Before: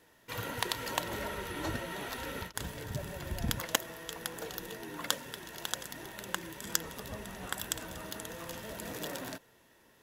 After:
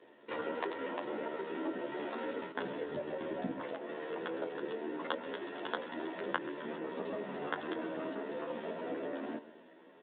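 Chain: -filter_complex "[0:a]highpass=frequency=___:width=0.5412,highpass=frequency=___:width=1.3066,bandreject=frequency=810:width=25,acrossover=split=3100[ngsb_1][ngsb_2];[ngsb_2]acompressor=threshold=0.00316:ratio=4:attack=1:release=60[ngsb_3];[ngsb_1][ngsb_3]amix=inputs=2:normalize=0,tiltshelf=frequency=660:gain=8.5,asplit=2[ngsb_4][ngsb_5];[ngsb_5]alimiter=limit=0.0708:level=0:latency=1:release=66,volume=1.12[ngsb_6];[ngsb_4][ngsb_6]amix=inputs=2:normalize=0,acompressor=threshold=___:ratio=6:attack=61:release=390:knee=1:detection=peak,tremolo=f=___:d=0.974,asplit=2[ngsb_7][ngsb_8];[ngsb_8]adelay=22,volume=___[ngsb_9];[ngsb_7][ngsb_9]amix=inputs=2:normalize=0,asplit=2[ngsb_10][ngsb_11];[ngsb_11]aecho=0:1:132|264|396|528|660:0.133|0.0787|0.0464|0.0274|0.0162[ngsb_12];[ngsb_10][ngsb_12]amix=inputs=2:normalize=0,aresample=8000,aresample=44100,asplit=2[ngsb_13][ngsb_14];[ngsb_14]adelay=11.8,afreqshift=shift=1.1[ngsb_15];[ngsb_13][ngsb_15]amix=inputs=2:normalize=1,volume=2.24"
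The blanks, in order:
290, 290, 0.0126, 38, 0.266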